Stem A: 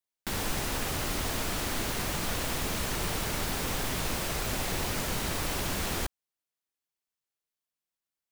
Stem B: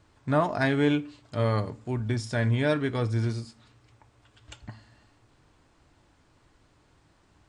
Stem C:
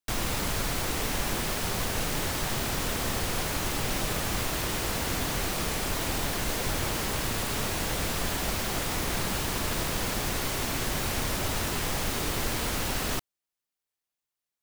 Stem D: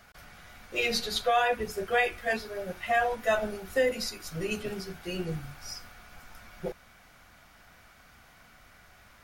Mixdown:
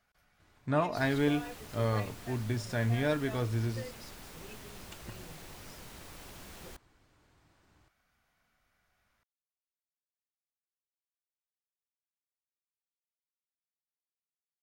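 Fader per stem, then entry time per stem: -17.5 dB, -5.0 dB, off, -19.5 dB; 0.70 s, 0.40 s, off, 0.00 s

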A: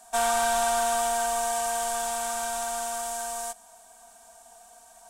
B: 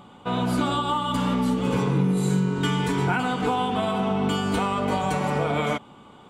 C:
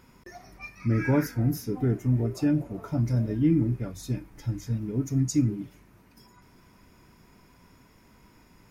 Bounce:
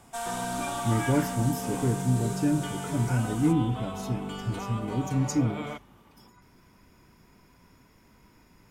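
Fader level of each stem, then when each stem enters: -9.5, -12.0, -1.5 dB; 0.00, 0.00, 0.00 s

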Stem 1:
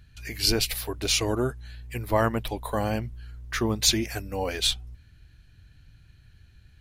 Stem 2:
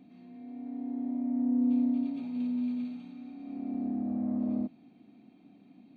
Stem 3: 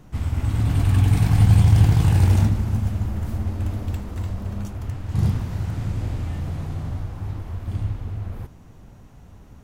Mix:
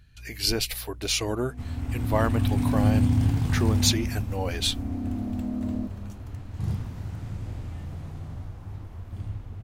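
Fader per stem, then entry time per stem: -2.0, +0.5, -8.5 dB; 0.00, 1.20, 1.45 s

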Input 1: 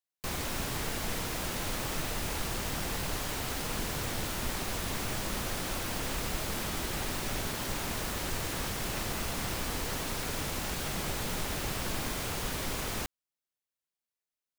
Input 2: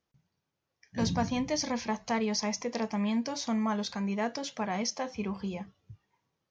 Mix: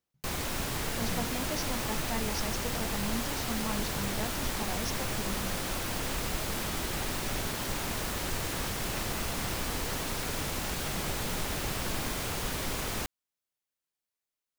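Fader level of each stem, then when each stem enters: +1.0, -7.0 dB; 0.00, 0.00 s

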